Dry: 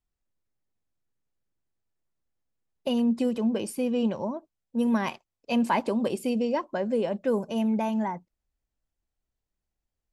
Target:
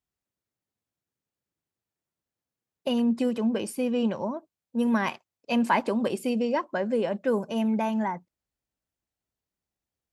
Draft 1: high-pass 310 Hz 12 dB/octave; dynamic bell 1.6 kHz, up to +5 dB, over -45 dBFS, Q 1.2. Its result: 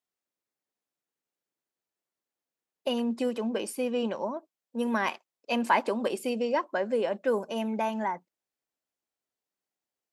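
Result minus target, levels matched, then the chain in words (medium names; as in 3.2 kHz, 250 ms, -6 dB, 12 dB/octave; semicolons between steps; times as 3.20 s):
125 Hz band -5.0 dB
high-pass 89 Hz 12 dB/octave; dynamic bell 1.6 kHz, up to +5 dB, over -45 dBFS, Q 1.2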